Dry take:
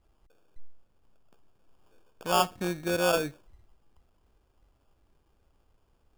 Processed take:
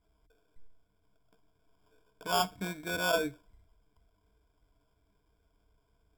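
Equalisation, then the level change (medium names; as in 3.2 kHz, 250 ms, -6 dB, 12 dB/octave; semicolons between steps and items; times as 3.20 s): rippled EQ curve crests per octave 1.7, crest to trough 14 dB; -5.5 dB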